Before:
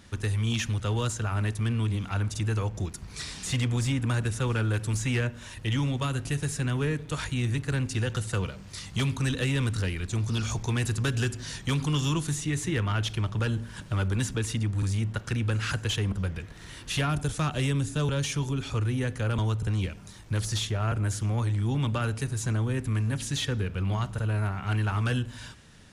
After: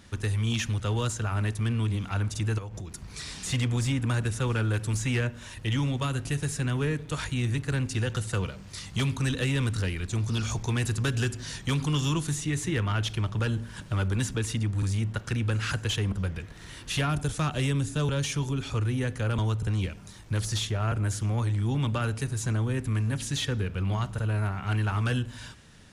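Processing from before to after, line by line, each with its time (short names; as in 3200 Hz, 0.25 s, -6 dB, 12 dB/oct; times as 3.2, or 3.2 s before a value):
2.58–3.34 compressor 12:1, threshold -33 dBFS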